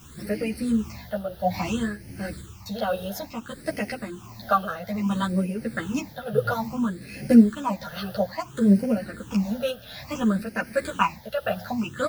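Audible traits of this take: a quantiser's noise floor 8-bit, dither triangular; phasing stages 8, 0.59 Hz, lowest notch 290–1100 Hz; tremolo triangle 1.4 Hz, depth 55%; a shimmering, thickened sound

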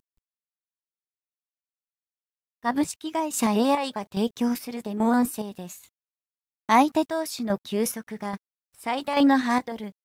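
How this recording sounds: chopped level 1.2 Hz, depth 60%, duty 50%; a quantiser's noise floor 12-bit, dither none

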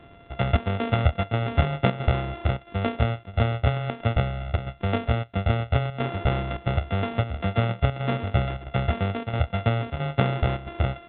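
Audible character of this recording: a buzz of ramps at a fixed pitch in blocks of 64 samples; chopped level 1.5 Hz, depth 65%, duty 85%; A-law

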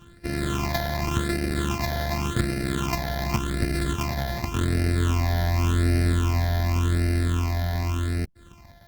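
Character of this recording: a buzz of ramps at a fixed pitch in blocks of 128 samples; phasing stages 8, 0.88 Hz, lowest notch 350–1000 Hz; Opus

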